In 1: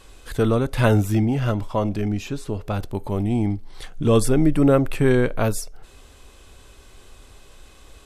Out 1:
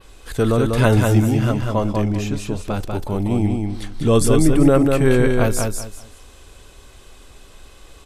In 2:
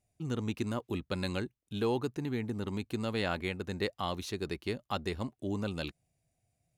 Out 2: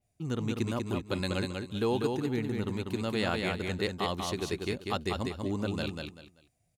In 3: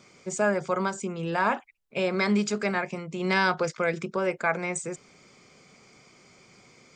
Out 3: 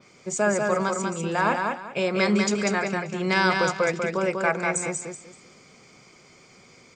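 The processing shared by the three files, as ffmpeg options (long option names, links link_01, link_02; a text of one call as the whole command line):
ffmpeg -i in.wav -af "adynamicequalizer=threshold=0.00355:dfrequency=7600:dqfactor=0.91:tfrequency=7600:tqfactor=0.91:attack=5:release=100:ratio=0.375:range=2:mode=boostabove:tftype=bell,aecho=1:1:194|388|582:0.631|0.158|0.0394,volume=1.5dB" out.wav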